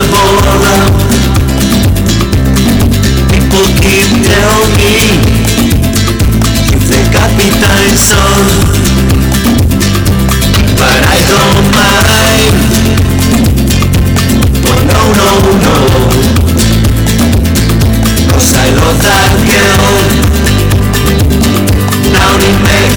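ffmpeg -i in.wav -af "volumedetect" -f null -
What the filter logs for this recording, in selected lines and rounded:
mean_volume: -6.3 dB
max_volume: -3.9 dB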